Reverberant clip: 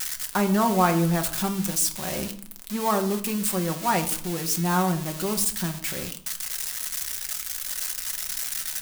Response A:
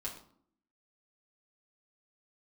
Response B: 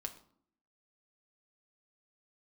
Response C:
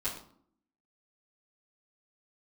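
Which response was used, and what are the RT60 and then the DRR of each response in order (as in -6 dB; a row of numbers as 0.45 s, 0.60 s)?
B; 0.60 s, 0.60 s, 0.60 s; -4.0 dB, 4.5 dB, -11.0 dB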